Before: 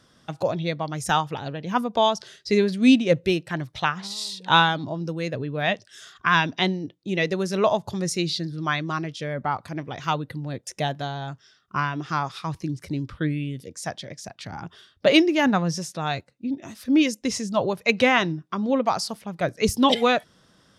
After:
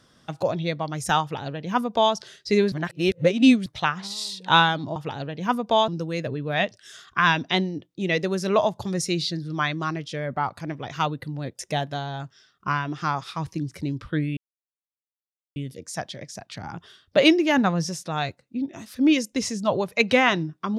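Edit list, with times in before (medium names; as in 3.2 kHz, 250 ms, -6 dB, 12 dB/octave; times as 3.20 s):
1.22–2.14 s: copy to 4.96 s
2.72–3.66 s: reverse
13.45 s: insert silence 1.19 s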